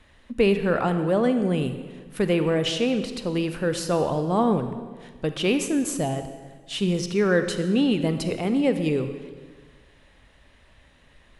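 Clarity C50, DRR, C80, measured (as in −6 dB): 9.0 dB, 8.5 dB, 10.5 dB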